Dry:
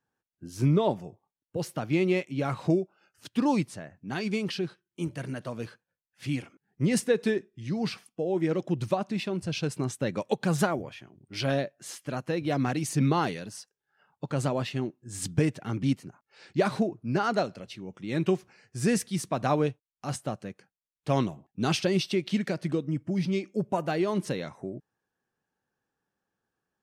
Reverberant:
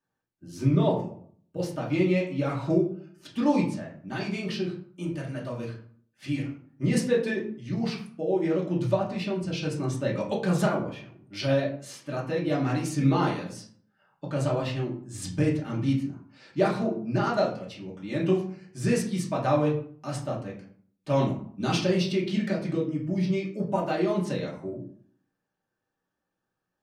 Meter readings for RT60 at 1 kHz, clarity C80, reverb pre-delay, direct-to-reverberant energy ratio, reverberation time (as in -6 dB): 0.55 s, 11.5 dB, 3 ms, -4.0 dB, 0.55 s